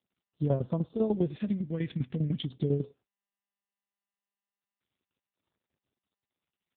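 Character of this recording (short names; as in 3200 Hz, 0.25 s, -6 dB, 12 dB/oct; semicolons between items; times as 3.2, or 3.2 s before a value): tremolo saw down 10 Hz, depth 75%; phasing stages 2, 0.4 Hz, lowest notch 680–2300 Hz; AMR-NB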